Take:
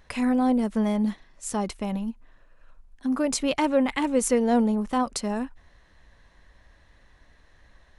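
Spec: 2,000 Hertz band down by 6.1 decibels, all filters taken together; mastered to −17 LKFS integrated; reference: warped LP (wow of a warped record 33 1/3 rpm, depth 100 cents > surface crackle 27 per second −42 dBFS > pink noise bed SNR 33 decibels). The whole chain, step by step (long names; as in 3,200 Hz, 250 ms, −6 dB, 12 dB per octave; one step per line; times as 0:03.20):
parametric band 2,000 Hz −7.5 dB
wow of a warped record 33 1/3 rpm, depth 100 cents
surface crackle 27 per second −42 dBFS
pink noise bed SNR 33 dB
level +8.5 dB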